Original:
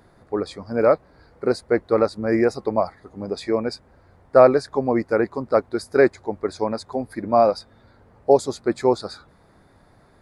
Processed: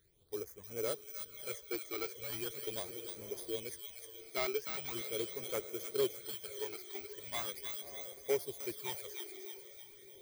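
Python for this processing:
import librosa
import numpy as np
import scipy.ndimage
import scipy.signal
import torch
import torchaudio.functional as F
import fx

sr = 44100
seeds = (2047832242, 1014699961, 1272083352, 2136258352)

p1 = fx.bit_reversed(x, sr, seeds[0], block=16)
p2 = fx.low_shelf_res(p1, sr, hz=320.0, db=-8.5, q=3.0)
p3 = p2 + fx.echo_diffused(p2, sr, ms=572, feedback_pct=51, wet_db=-13.5, dry=0)
p4 = fx.phaser_stages(p3, sr, stages=12, low_hz=160.0, high_hz=4100.0, hz=0.4, feedback_pct=25)
p5 = fx.tone_stack(p4, sr, knobs='6-0-2')
p6 = 10.0 ** (-24.5 / 20.0) * np.tanh(p5 / 10.0 ** (-24.5 / 20.0))
p7 = fx.echo_wet_highpass(p6, sr, ms=306, feedback_pct=47, hz=1700.0, wet_db=-5)
p8 = fx.slew_limit(p7, sr, full_power_hz=98.0)
y = p8 * 10.0 ** (4.0 / 20.0)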